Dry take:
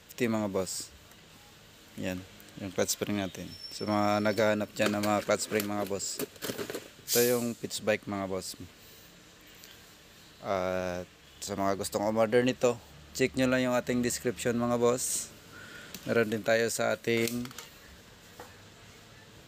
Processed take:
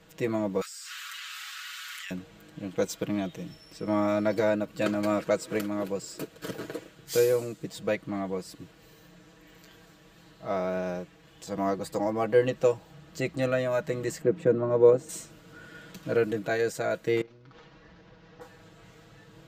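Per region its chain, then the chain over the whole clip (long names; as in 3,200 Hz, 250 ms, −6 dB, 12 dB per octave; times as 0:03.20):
0:00.61–0:02.11: elliptic high-pass filter 1,300 Hz, stop band 60 dB + envelope flattener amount 100%
0:14.21–0:15.09: high-pass filter 230 Hz + spectral tilt −4.5 dB per octave
0:17.21–0:18.41: variable-slope delta modulation 32 kbit/s + high-shelf EQ 3,500 Hz −8.5 dB + downward compressor 8 to 1, threshold −46 dBFS
whole clip: high-shelf EQ 2,100 Hz −10.5 dB; comb filter 6.2 ms, depth 84%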